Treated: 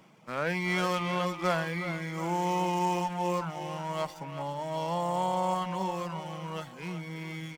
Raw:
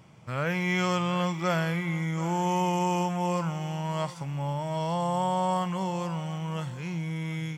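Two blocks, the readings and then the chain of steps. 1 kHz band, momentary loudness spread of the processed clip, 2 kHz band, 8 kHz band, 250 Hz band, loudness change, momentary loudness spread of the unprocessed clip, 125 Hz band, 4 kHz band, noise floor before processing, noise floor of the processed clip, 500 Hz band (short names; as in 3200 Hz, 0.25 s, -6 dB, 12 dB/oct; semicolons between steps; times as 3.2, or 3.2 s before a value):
-1.0 dB, 10 LU, -1.0 dB, -3.5 dB, -5.0 dB, -2.5 dB, 7 LU, -7.0 dB, -2.0 dB, -42 dBFS, -47 dBFS, -1.0 dB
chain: HPF 180 Hz 24 dB/oct; reverb removal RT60 0.65 s; speakerphone echo 0.37 s, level -9 dB; running maximum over 3 samples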